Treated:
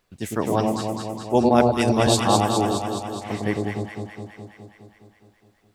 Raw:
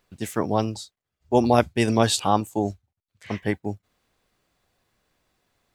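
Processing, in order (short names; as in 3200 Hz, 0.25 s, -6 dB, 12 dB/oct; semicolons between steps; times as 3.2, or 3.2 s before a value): echo with dull and thin repeats by turns 0.104 s, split 940 Hz, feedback 81%, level -2 dB; 1.49–2.07 three-band expander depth 70%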